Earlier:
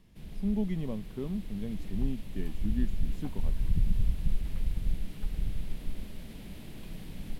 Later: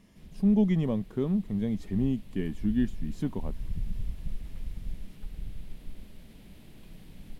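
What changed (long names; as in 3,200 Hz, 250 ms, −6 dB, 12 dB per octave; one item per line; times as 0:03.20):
speech +7.5 dB
background −6.5 dB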